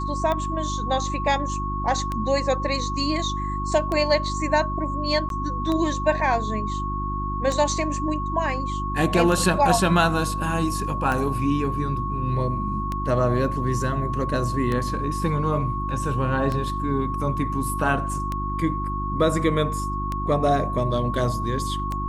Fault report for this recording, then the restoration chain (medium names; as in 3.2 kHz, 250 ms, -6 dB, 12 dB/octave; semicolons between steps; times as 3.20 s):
hum 50 Hz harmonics 7 -29 dBFS
tick 33 1/3 rpm -14 dBFS
whine 1.1 kHz -28 dBFS
5.29–5.30 s: dropout 12 ms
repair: de-click; de-hum 50 Hz, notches 7; band-stop 1.1 kHz, Q 30; interpolate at 5.29 s, 12 ms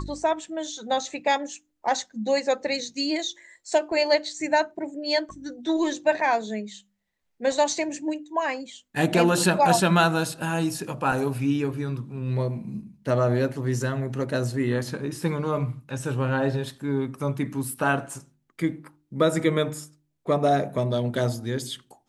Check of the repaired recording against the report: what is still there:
nothing left